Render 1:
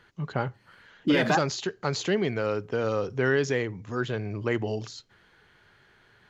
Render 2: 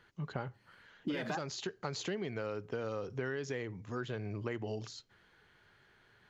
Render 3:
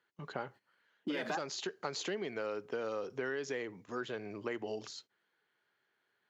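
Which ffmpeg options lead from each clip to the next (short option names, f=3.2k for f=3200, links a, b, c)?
-af "acompressor=threshold=-28dB:ratio=6,volume=-6dB"
-af "highpass=270,agate=range=-15dB:threshold=-56dB:ratio=16:detection=peak,volume=1.5dB"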